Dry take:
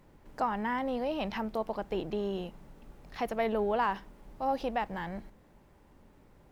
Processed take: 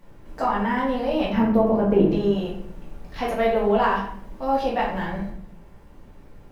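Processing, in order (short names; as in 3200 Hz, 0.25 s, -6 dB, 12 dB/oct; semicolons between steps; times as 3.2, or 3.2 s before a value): 1.3–2.09 ten-band EQ 125 Hz +9 dB, 250 Hz +10 dB, 500 Hz +3 dB, 4000 Hz -10 dB, 8000 Hz -6 dB; reverb RT60 0.65 s, pre-delay 4 ms, DRR -5.5 dB; gain +2 dB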